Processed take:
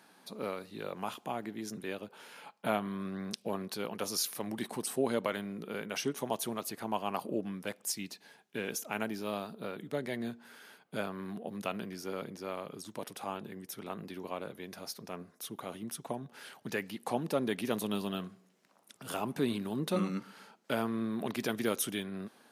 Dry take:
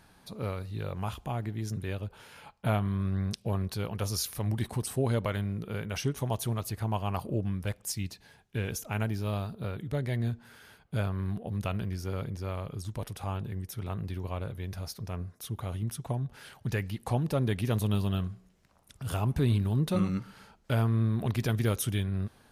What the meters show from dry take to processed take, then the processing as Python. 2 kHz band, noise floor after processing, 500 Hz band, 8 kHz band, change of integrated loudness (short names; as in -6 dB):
0.0 dB, -66 dBFS, 0.0 dB, 0.0 dB, -4.5 dB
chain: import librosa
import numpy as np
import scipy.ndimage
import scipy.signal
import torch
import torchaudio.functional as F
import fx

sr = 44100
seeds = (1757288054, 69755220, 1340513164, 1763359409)

y = scipy.signal.sosfilt(scipy.signal.butter(4, 210.0, 'highpass', fs=sr, output='sos'), x)